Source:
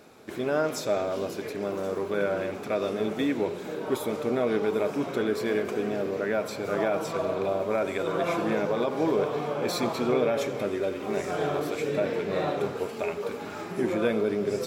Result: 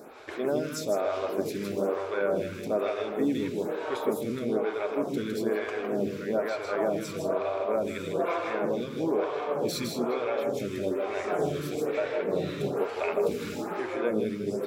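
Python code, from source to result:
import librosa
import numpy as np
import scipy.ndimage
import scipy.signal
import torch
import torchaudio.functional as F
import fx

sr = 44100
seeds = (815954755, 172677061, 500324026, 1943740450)

p1 = fx.rider(x, sr, range_db=10, speed_s=0.5)
p2 = p1 + fx.echo_single(p1, sr, ms=159, db=-4.0, dry=0)
y = fx.stagger_phaser(p2, sr, hz=1.1)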